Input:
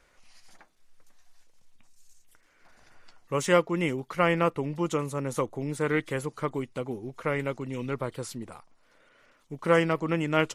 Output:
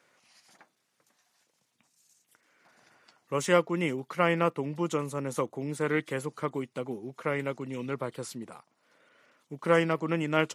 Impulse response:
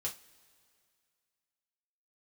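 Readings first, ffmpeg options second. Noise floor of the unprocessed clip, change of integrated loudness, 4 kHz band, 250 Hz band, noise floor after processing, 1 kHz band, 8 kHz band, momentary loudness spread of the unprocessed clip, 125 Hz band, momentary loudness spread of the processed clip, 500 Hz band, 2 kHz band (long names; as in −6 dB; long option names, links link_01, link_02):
−64 dBFS, −1.5 dB, −1.5 dB, −1.5 dB, −76 dBFS, −1.5 dB, −1.5 dB, 11 LU, −2.5 dB, 12 LU, −1.5 dB, −1.5 dB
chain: -af "highpass=frequency=130:width=0.5412,highpass=frequency=130:width=1.3066,volume=-1.5dB"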